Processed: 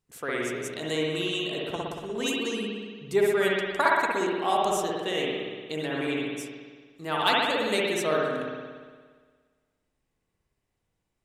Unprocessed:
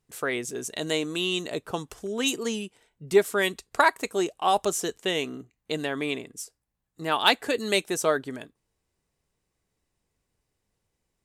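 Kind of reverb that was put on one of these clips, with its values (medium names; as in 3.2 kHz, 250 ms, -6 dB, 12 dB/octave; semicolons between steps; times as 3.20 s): spring tank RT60 1.6 s, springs 58 ms, chirp 70 ms, DRR -4 dB; trim -5.5 dB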